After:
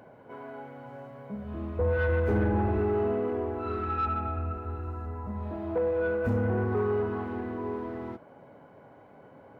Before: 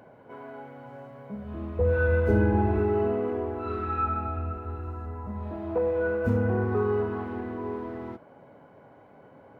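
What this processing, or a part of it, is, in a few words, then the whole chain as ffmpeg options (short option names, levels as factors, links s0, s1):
saturation between pre-emphasis and de-emphasis: -af "highshelf=f=3300:g=10,asoftclip=type=tanh:threshold=0.1,highshelf=f=3300:g=-10"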